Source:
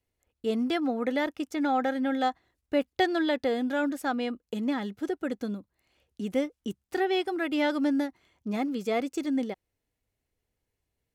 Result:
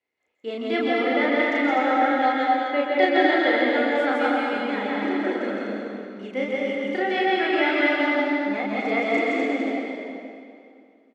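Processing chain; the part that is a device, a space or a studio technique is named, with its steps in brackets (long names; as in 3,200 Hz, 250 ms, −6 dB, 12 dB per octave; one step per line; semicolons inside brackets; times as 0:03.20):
station announcement (band-pass filter 350–3,600 Hz; parametric band 2,100 Hz +8 dB 0.24 octaves; loudspeakers that aren't time-aligned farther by 12 metres −1 dB, 58 metres −1 dB, 86 metres −3 dB; convolution reverb RT60 2.4 s, pre-delay 119 ms, DRR −2 dB)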